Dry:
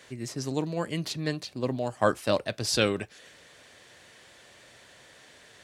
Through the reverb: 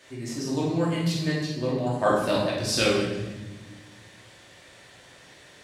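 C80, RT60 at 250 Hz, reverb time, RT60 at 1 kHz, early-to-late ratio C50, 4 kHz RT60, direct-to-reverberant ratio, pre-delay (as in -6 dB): 4.5 dB, 2.1 s, 1.2 s, 1.0 s, 1.5 dB, 1.0 s, -6.0 dB, 3 ms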